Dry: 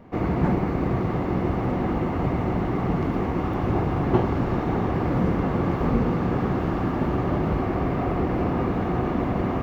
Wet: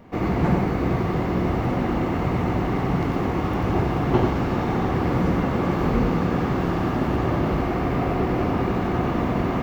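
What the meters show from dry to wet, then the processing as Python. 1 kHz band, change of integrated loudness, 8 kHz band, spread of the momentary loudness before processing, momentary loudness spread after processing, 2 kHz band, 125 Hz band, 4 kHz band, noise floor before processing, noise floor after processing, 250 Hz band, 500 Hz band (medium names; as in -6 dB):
+2.0 dB, +1.5 dB, no reading, 2 LU, 2 LU, +4.0 dB, +1.0 dB, +6.0 dB, -27 dBFS, -25 dBFS, +1.5 dB, +1.5 dB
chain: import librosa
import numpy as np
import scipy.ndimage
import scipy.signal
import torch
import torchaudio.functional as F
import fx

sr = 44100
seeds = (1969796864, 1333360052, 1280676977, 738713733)

p1 = fx.high_shelf(x, sr, hz=2600.0, db=8.0)
y = p1 + fx.echo_single(p1, sr, ms=92, db=-5.0, dry=0)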